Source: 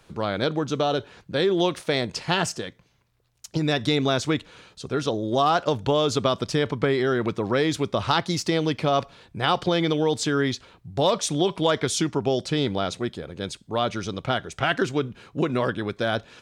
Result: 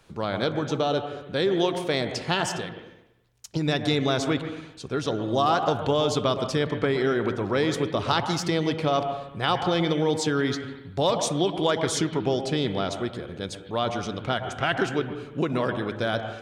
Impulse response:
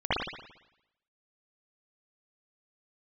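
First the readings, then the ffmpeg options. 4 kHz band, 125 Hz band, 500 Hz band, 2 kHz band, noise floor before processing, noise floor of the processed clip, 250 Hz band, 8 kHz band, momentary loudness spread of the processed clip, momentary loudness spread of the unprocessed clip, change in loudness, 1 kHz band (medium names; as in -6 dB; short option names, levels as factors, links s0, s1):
-1.5 dB, -1.0 dB, -1.0 dB, -1.5 dB, -63 dBFS, -47 dBFS, -1.0 dB, -2.0 dB, 8 LU, 8 LU, -1.5 dB, -1.0 dB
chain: -filter_complex "[0:a]asplit=2[s0][s1];[1:a]atrim=start_sample=2205,lowpass=3400,adelay=61[s2];[s1][s2]afir=irnorm=-1:irlink=0,volume=0.0944[s3];[s0][s3]amix=inputs=2:normalize=0,volume=0.794"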